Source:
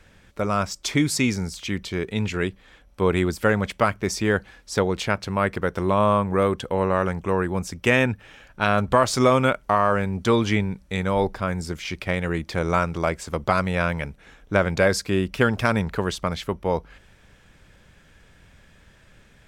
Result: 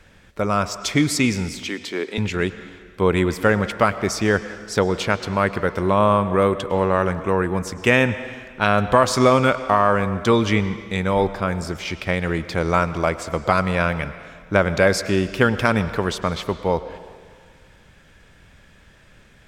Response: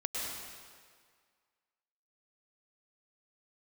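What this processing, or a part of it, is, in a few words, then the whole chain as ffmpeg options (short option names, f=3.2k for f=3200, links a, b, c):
filtered reverb send: -filter_complex "[0:a]asettb=1/sr,asplit=3[a][b][c];[a]atrim=end=1.654[d];[b]atrim=start=1.65:end=2.18,asetpts=PTS-STARTPTS,afade=t=in:d=0.004:c=qsin,afade=t=out:st=0.526:d=0.004:c=qsin,highpass=f=260:w=0.5412,highpass=f=260:w=1.3066[e];[c]atrim=start=2.176[f];[d][e]acrossfade=d=0.004:c1=hsin:c2=qsin[g];[g][f]acrossfade=d=0.004:c1=qsin:c2=hsin,asplit=2[h][i];[i]highpass=f=180:p=1,lowpass=7.1k[j];[1:a]atrim=start_sample=2205[k];[j][k]afir=irnorm=-1:irlink=0,volume=-14dB[l];[h][l]amix=inputs=2:normalize=0,volume=1.5dB"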